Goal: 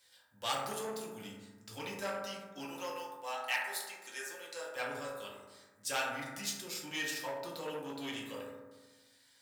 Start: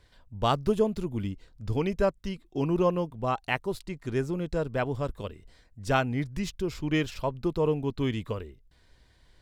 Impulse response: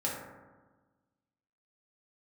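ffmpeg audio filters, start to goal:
-filter_complex "[0:a]asplit=3[a][b][c];[a]afade=t=out:st=2.62:d=0.02[d];[b]highpass=550,afade=t=in:st=2.62:d=0.02,afade=t=out:st=4.75:d=0.02[e];[c]afade=t=in:st=4.75:d=0.02[f];[d][e][f]amix=inputs=3:normalize=0[g];[1:a]atrim=start_sample=2205[h];[g][h]afir=irnorm=-1:irlink=0,asoftclip=type=tanh:threshold=-15dB,aderivative,volume=5.5dB"

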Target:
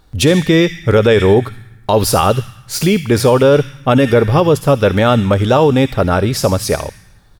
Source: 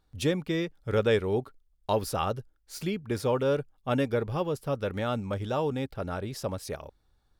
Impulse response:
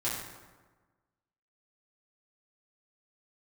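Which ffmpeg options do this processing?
-filter_complex "[0:a]asplit=2[a][b];[b]firequalizer=gain_entry='entry(130,0);entry(430,-22);entry(1800,8);entry(5800,14)':delay=0.05:min_phase=1[c];[1:a]atrim=start_sample=2205,adelay=55[d];[c][d]afir=irnorm=-1:irlink=0,volume=-24.5dB[e];[a][e]amix=inputs=2:normalize=0,alimiter=level_in=21dB:limit=-1dB:release=50:level=0:latency=1,volume=-1dB"

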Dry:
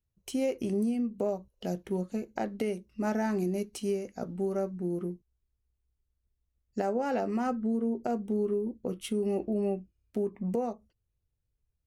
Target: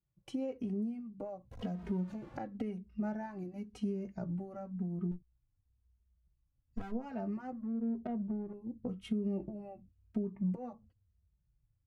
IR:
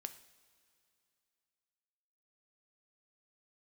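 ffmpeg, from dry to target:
-filter_complex "[0:a]asettb=1/sr,asplit=3[a][b][c];[a]atrim=end=1.514[d];[b]atrim=start=1.51:end=2.37,asetpts=PTS-STARTPTS,afade=t=in:d=0.004:c=qsin,afade=t=out:st=0.856:d=0.004:c=qsin,aeval=exprs='val(0)+0.5*0.0106*sgn(val(0))':c=same[e];[c]atrim=start=2.366[f];[d][e]acrossfade=d=0.004:c1=hsin:c2=qsin[g];[g][f]acrossfade=d=0.004:c1=qsin:c2=hsin,bandpass=f=310:t=q:w=0.5:csg=0,equalizer=f=410:t=o:w=1.5:g=-8.5,acompressor=threshold=-42dB:ratio=6,asettb=1/sr,asplit=3[h][i][j];[h]atrim=end=5.114[k];[i]atrim=start=5.11:end=6.92,asetpts=PTS-STARTPTS,afade=t=in:d=0.004:c=qsin,afade=t=out:st=1.806:d=0.004:c=qsin,aeval=exprs='clip(val(0),-1,0.00112)':c=same[l];[j]atrim=start=6.916[m];[k][l]acrossfade=d=0.004:c1=hsin:c2=qsin[n];[n][m]acrossfade=d=0.004:c1=qsin:c2=hsin,asubboost=boost=2.5:cutoff=200,asettb=1/sr,asplit=3[o][p][q];[o]atrim=end=7.524[r];[p]atrim=start=7.52:end=8.53,asetpts=PTS-STARTPTS,afade=t=in:d=0.004:c=qsin,afade=t=out:st=1.006:d=0.004:c=qsin,adynamicsmooth=sensitivity=7:basefreq=590[s];[q]atrim=start=8.526[t];[r][s]acrossfade=d=0.004:c1=hsin:c2=qsin[u];[u][t]acrossfade=d=0.004:c1=qsin:c2=hsin,asplit=2[v][w];[w]adelay=2.9,afreqshift=-0.96[x];[v][x]amix=inputs=2:normalize=1,volume=8.5dB"

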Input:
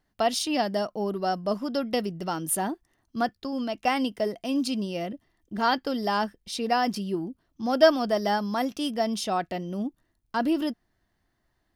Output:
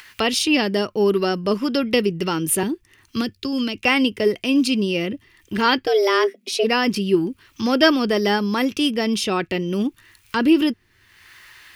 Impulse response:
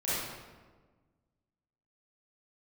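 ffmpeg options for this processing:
-filter_complex "[0:a]equalizer=f=690:t=o:w=0.44:g=-12.5,asettb=1/sr,asplit=3[a][b][c];[a]atrim=end=2.634[d];[b]atrim=start=2.63:end=3.85,asetpts=PTS-STARTPTS,afade=t=in:d=0.004:c=qsin,afade=t=out:st=1.216:d=0.004:c=qsin,acrossover=split=410|3000[e][f][g];[f]acompressor=threshold=-45dB:ratio=6[h];[e][h][g]amix=inputs=3:normalize=0[i];[c]atrim=start=3.846[j];[d][i]acrossfade=d=0.004:c1=hsin:c2=qsin[k];[k][j]acrossfade=d=0.004:c1=qsin:c2=hsin,asplit=3[l][m][n];[l]afade=t=out:st=5.86:d=0.02[o];[m]afreqshift=190,afade=t=in:st=5.86:d=0.02,afade=t=out:st=6.63:d=0.02[p];[n]afade=t=in:st=6.63:d=0.02[q];[o][p][q]amix=inputs=3:normalize=0,equalizer=f=100:t=o:w=0.67:g=12,equalizer=f=400:t=o:w=0.67:g=8,equalizer=f=2.5k:t=o:w=0.67:g=10,acrossover=split=940[r][s];[s]acompressor=mode=upward:threshold=-31dB:ratio=2.5[t];[r][t]amix=inputs=2:normalize=0,volume=6dB"

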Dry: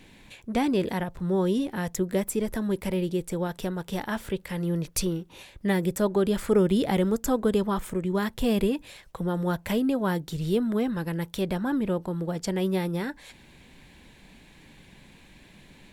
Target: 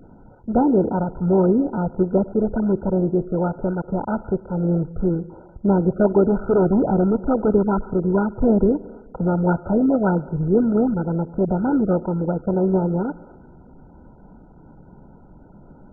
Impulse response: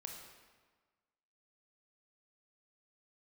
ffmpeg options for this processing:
-filter_complex "[0:a]asettb=1/sr,asplit=3[a][b][c];[a]atrim=end=6.254[d];[b]atrim=start=6.25:end=7.5,asetpts=PTS-STARTPTS,afade=t=in:d=0.004:c=qsin,afade=t=out:st=1.246:d=0.004:c=qsin,volume=21dB,asoftclip=hard,volume=-21dB[e];[c]atrim=start=7.496[f];[d][e]acrossfade=d=0.004:c1=hsin:c2=qsin[g];[g][f]acrossfade=d=0.004:c1=qsin:c2=hsin,asplit=2[h][i];[1:a]atrim=start_sample=2205[j];[i][j]afir=irnorm=-1:irlink=0,volume=-9dB[k];[h][k]amix=inputs=2:normalize=0,volume=6dB" -ar 16000 -c:a mp2 -b:a 8k

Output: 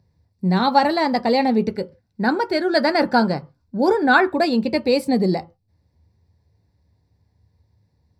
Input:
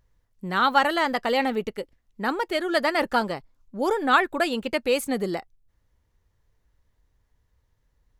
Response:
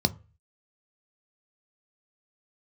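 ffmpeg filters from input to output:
-filter_complex "[0:a]asettb=1/sr,asplit=3[a][b][c];[a]atrim=end=1.654[d];[b]atrim=start=1.65:end=4.28,asetpts=PTS-STARTPTS,afade=t=in:d=0.004:c=qsin,afade=t=out:st=2.626:d=0.004:c=qsin,equalizer=f=1.5k:w=6.5:g=14.5[e];[c]atrim=start=4.276[f];[d][e]acrossfade=d=0.004:c1=hsin:c2=qsin[g];[g][f]acrossfade=d=0.004:c1=qsin:c2=hsin[h];[1:a]atrim=start_sample=2205,afade=t=out:st=0.22:d=0.01,atrim=end_sample=10143[i];[h][i]afir=irnorm=-1:irlink=0,volume=-8dB"

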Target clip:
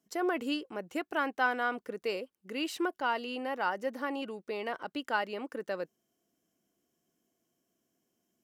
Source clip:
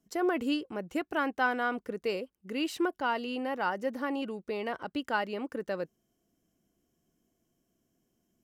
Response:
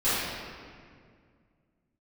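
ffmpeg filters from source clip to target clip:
-af "highpass=f=340:p=1"

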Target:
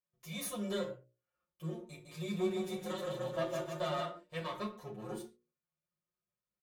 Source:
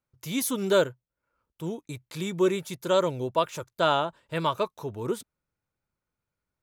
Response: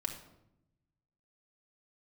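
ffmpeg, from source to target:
-filter_complex "[0:a]aeval=exprs='if(lt(val(0),0),0.251*val(0),val(0))':c=same,highpass=66,bandreject=f=60:t=h:w=6,bandreject=f=120:t=h:w=6,bandreject=f=180:t=h:w=6,bandreject=f=240:t=h:w=6,bandreject=f=300:t=h:w=6,bandreject=f=360:t=h:w=6,bandreject=f=420:t=h:w=6,bandreject=f=480:t=h:w=6,bandreject=f=540:t=h:w=6,bandreject=f=600:t=h:w=6,aecho=1:1:5.6:0.96,acompressor=threshold=-24dB:ratio=10,asettb=1/sr,asplit=3[a][b][c];[a]atrim=end=1.784[d];[b]atrim=start=1.78:end=4.05,asetpts=PTS-STARTPTS,afade=t=in:d=0.004:c=qsin,afade=t=out:st=2.266:d=0.004:c=qsin,aecho=1:1:160|304|433.6|550.2|655.2:0.631|0.398|0.251|0.158|0.1,atrim=end_sample=100107[e];[c]atrim=start=4.046[f];[d][e]acrossfade=d=0.004:c1=hsin:c2=qsin[g];[g][f]acrossfade=d=0.004:c1=qsin:c2=hsin[h];[1:a]atrim=start_sample=2205,afade=t=out:st=0.34:d=0.01,atrim=end_sample=15435,asetrate=88200,aresample=44100[i];[h][i]afir=irnorm=-1:irlink=0,asplit=2[j][k];[k]adelay=8.4,afreqshift=0.5[l];[j][l]amix=inputs=2:normalize=1,volume=-2dB"

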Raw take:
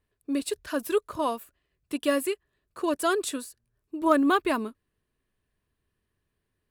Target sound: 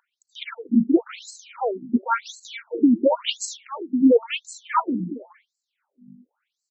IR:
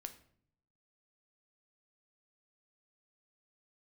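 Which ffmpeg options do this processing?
-filter_complex "[0:a]highpass=f=59:w=0.5412,highpass=f=59:w=1.3066,equalizer=f=200:w=5.6:g=-3,asplit=2[a][b];[b]aecho=0:1:418:0.473[c];[a][c]amix=inputs=2:normalize=0,aeval=exprs='val(0)+0.00501*(sin(2*PI*60*n/s)+sin(2*PI*2*60*n/s)/2+sin(2*PI*3*60*n/s)/3+sin(2*PI*4*60*n/s)/4+sin(2*PI*5*60*n/s)/5)':c=same,asetrate=36028,aresample=44100,atempo=1.22405,asplit=2[d][e];[e]adelay=227,lowpass=f=3.4k:p=1,volume=-11dB,asplit=2[f][g];[g]adelay=227,lowpass=f=3.4k:p=1,volume=0.21,asplit=2[h][i];[i]adelay=227,lowpass=f=3.4k:p=1,volume=0.21[j];[f][h][j]amix=inputs=3:normalize=0[k];[d][k]amix=inputs=2:normalize=0,alimiter=level_in=13dB:limit=-1dB:release=50:level=0:latency=1,afftfilt=real='re*between(b*sr/1024,230*pow(5800/230,0.5+0.5*sin(2*PI*0.94*pts/sr))/1.41,230*pow(5800/230,0.5+0.5*sin(2*PI*0.94*pts/sr))*1.41)':imag='im*between(b*sr/1024,230*pow(5800/230,0.5+0.5*sin(2*PI*0.94*pts/sr))/1.41,230*pow(5800/230,0.5+0.5*sin(2*PI*0.94*pts/sr))*1.41)':win_size=1024:overlap=0.75"

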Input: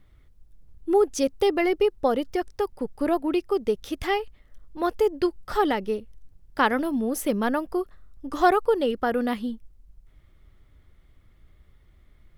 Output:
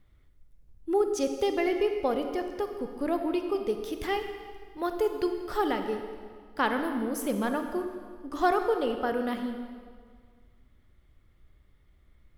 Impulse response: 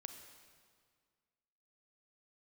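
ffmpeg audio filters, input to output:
-filter_complex "[0:a]asettb=1/sr,asplit=3[a][b][c];[a]atrim=end=3.694[d];[b]atrim=start=3.69:end=5.71,asetpts=PTS-STARTPTS,afade=t=in:d=0.004:c=qsin,afade=t=out:st=2.016:d=0.004:c=qsin,highshelf=f=12k:g=6[e];[c]atrim=start=5.706[f];[d][e]acrossfade=d=0.004:c1=hsin:c2=qsin[g];[g][f]acrossfade=d=0.004:c1=qsin:c2=hsin[h];[1:a]atrim=start_sample=2205[i];[h][i]afir=irnorm=-1:irlink=0"

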